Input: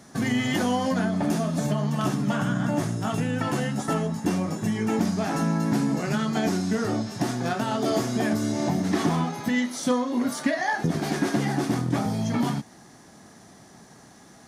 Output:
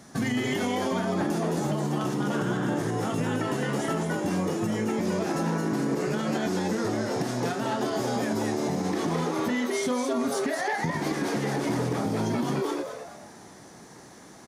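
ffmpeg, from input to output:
-filter_complex "[0:a]asplit=6[a][b][c][d][e][f];[b]adelay=215,afreqshift=150,volume=-3.5dB[g];[c]adelay=430,afreqshift=300,volume=-12.6dB[h];[d]adelay=645,afreqshift=450,volume=-21.7dB[i];[e]adelay=860,afreqshift=600,volume=-30.9dB[j];[f]adelay=1075,afreqshift=750,volume=-40dB[k];[a][g][h][i][j][k]amix=inputs=6:normalize=0,alimiter=limit=-18.5dB:level=0:latency=1:release=128"

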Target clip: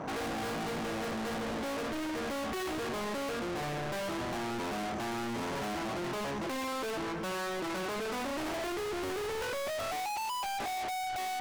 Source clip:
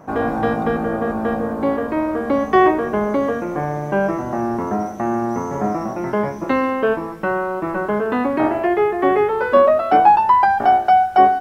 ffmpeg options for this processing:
-filter_complex "[0:a]lowpass=5.2k,asettb=1/sr,asplit=3[a][b][c];[a]atrim=end=8.724[d];[b]atrim=start=8.72:end=9.43,asetpts=PTS-STARTPTS,afade=t=in:d=0.004:c=qsin,afade=t=out:st=0.706:d=0.004:c=qsin,aemphasis=mode=reproduction:type=riaa[e];[c]atrim=start=9.426[f];[d][e]acrossfade=d=0.004:c1=hsin:c2=qsin[g];[g][f]acrossfade=d=0.004:c1=qsin:c2=hsin,highpass=44,bandreject=f=50:t=h:w=6,bandreject=f=100:t=h:w=6,bandreject=f=150:t=h:w=6,bandreject=f=200:t=h:w=6,bandreject=f=250:t=h:w=6,asoftclip=type=hard:threshold=-40dB,volume=5dB"

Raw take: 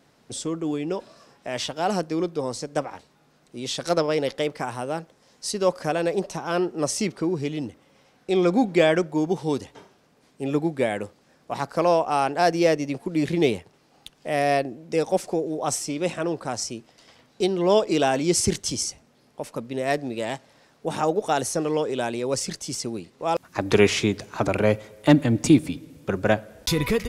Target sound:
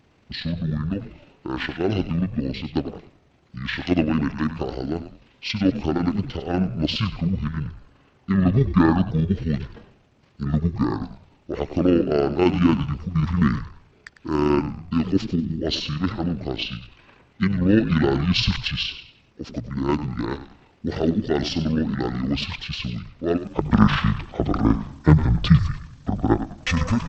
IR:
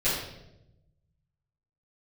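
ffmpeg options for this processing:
-filter_complex "[0:a]tremolo=f=26:d=0.4,asplit=5[a][b][c][d][e];[b]adelay=99,afreqshift=-130,volume=-11dB[f];[c]adelay=198,afreqshift=-260,volume=-20.4dB[g];[d]adelay=297,afreqshift=-390,volume=-29.7dB[h];[e]adelay=396,afreqshift=-520,volume=-39.1dB[i];[a][f][g][h][i]amix=inputs=5:normalize=0,asetrate=22696,aresample=44100,atempo=1.94306,volume=3.5dB"

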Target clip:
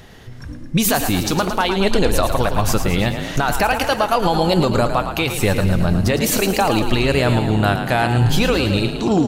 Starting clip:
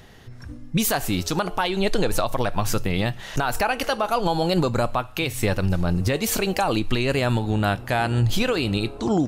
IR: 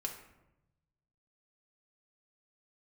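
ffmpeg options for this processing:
-filter_complex "[0:a]asplit=8[a][b][c][d][e][f][g][h];[b]adelay=110,afreqshift=30,volume=-8.5dB[i];[c]adelay=220,afreqshift=60,volume=-13.1dB[j];[d]adelay=330,afreqshift=90,volume=-17.7dB[k];[e]adelay=440,afreqshift=120,volume=-22.2dB[l];[f]adelay=550,afreqshift=150,volume=-26.8dB[m];[g]adelay=660,afreqshift=180,volume=-31.4dB[n];[h]adelay=770,afreqshift=210,volume=-36dB[o];[a][i][j][k][l][m][n][o]amix=inputs=8:normalize=0,acontrast=21"

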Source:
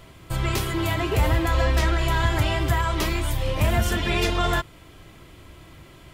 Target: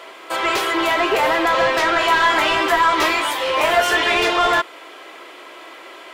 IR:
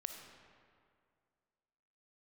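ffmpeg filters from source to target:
-filter_complex "[0:a]highpass=f=350:w=0.5412,highpass=f=350:w=1.3066,asplit=2[a][b];[b]highpass=f=720:p=1,volume=19dB,asoftclip=type=tanh:threshold=-10.5dB[c];[a][c]amix=inputs=2:normalize=0,lowpass=f=2k:p=1,volume=-6dB,asettb=1/sr,asplit=3[d][e][f];[d]atrim=end=1.944[g];[e]atrim=start=1.94:end=4.12,asetpts=PTS-STARTPTS,afade=t=in:d=0.004:c=qsin,afade=t=out:st=2.176:d=0.004:c=qsin,asplit=2[h][i];[i]adelay=16,volume=-4dB[j];[h][j]amix=inputs=2:normalize=0,atrim=end_sample=96138[k];[f]atrim=start=4.116[l];[g][k]acrossfade=d=0.004:c1=hsin:c2=qsin[m];[m][l]acrossfade=d=0.004:c1=qsin:c2=hsin,volume=3.5dB"

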